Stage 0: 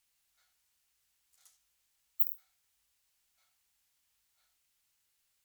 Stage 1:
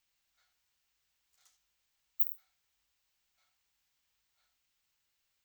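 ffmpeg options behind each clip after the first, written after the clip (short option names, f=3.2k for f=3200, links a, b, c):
-af "equalizer=f=11k:t=o:w=0.67:g=-14"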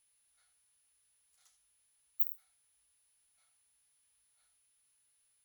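-af "aeval=exprs='val(0)+0.000282*sin(2*PI*10000*n/s)':c=same,volume=-1.5dB"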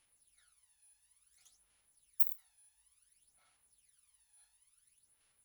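-af "aphaser=in_gain=1:out_gain=1:delay=1.2:decay=0.67:speed=0.57:type=sinusoidal"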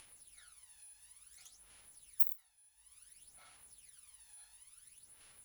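-af "acompressor=mode=upward:threshold=-48dB:ratio=2.5"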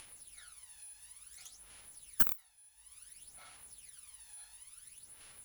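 -af "aeval=exprs='(tanh(8.91*val(0)+0.35)-tanh(0.35))/8.91':c=same,volume=6.5dB"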